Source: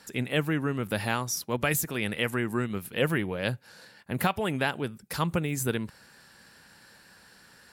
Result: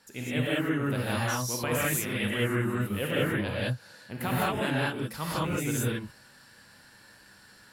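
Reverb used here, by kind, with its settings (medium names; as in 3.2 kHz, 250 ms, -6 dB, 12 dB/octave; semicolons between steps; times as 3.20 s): gated-style reverb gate 230 ms rising, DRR -7 dB; trim -8 dB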